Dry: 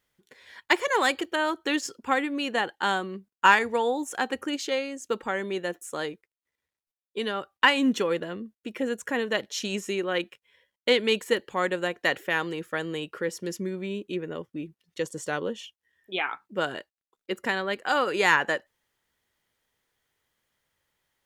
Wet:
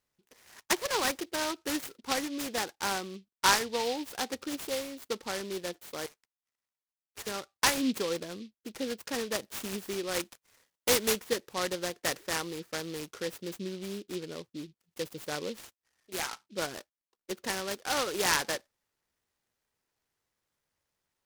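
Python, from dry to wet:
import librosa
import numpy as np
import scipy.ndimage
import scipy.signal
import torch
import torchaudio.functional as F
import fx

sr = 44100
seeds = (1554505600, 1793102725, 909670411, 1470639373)

y = fx.highpass(x, sr, hz=840.0, slope=24, at=(6.06, 7.27))
y = fx.high_shelf(y, sr, hz=fx.line((10.09, 3900.0), (11.11, 2700.0)), db=11.0, at=(10.09, 11.11), fade=0.02)
y = fx.noise_mod_delay(y, sr, seeds[0], noise_hz=3500.0, depth_ms=0.1)
y = y * 10.0 ** (-6.0 / 20.0)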